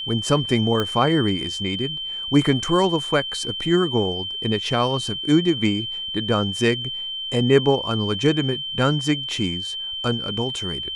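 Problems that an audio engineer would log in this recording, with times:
whine 3.1 kHz -27 dBFS
0.80 s: pop -10 dBFS

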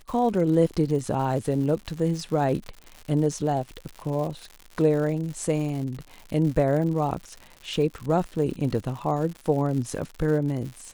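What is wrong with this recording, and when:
crackle 140 per s -33 dBFS

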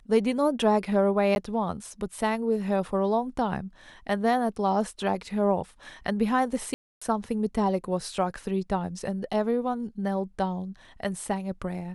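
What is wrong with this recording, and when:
1.35–1.36 s: dropout 11 ms
6.74–7.01 s: dropout 275 ms

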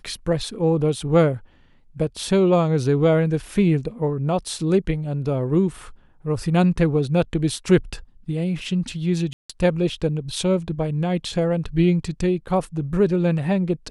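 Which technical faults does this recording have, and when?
9.33–9.49 s: dropout 165 ms

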